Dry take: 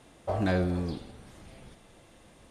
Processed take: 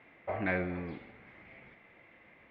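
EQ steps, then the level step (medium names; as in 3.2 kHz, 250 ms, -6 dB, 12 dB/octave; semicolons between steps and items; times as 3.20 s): high-pass 180 Hz 6 dB/octave; four-pole ladder low-pass 2.3 kHz, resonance 75%; +7.0 dB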